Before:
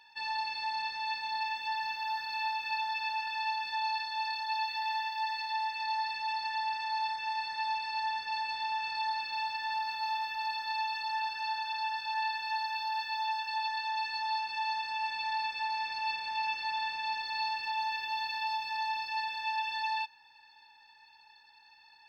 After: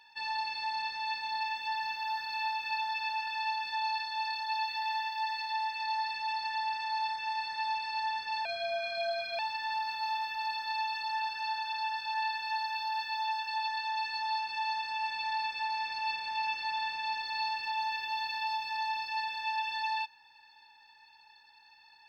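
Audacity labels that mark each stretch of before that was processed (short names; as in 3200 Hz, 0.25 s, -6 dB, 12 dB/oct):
8.450000	9.390000	frequency shift -200 Hz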